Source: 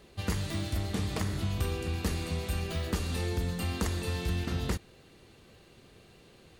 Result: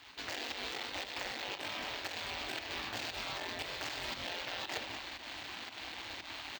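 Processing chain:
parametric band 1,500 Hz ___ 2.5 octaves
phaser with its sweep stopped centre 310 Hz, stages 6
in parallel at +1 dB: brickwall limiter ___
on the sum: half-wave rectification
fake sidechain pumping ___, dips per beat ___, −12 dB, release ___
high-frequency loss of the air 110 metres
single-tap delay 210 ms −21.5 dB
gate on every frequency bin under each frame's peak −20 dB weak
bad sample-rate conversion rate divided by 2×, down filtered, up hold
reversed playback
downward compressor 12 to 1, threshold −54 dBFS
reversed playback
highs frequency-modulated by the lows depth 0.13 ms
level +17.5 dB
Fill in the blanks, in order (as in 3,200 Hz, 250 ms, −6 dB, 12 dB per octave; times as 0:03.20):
+6.5 dB, −28.5 dBFS, 116 BPM, 1, 134 ms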